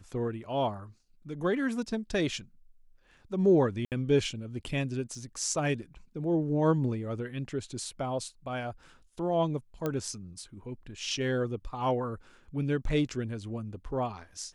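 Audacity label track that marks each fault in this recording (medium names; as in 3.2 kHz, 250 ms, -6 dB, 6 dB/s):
3.850000	3.920000	dropout 68 ms
5.150000	5.150000	dropout 3.2 ms
9.860000	9.860000	pop -18 dBFS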